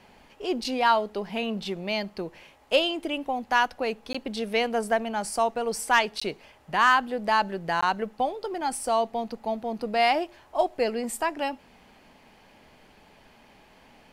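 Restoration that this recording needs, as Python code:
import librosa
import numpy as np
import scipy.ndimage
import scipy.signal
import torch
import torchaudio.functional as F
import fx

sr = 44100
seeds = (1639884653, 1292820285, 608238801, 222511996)

y = fx.fix_declip(x, sr, threshold_db=-9.5)
y = fx.fix_interpolate(y, sr, at_s=(4.13, 6.2, 7.81), length_ms=15.0)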